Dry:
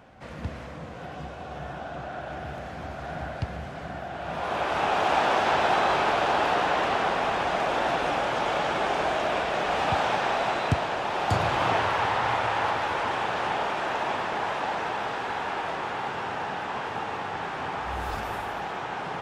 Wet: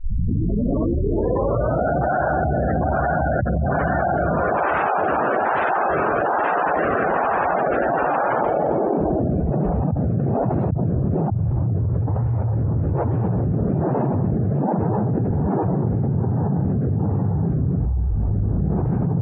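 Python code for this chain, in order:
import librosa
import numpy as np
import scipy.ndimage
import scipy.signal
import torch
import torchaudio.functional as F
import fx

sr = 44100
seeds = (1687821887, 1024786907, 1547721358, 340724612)

p1 = fx.tape_start_head(x, sr, length_s=1.95)
p2 = fx.rotary(p1, sr, hz=1.2)
p3 = fx.spec_gate(p2, sr, threshold_db=-15, keep='strong')
p4 = p3 + fx.echo_single(p3, sr, ms=734, db=-23.0, dry=0)
p5 = fx.filter_sweep_lowpass(p4, sr, from_hz=1600.0, to_hz=130.0, start_s=8.34, end_s=9.25, q=1.1)
y = fx.env_flatten(p5, sr, amount_pct=100)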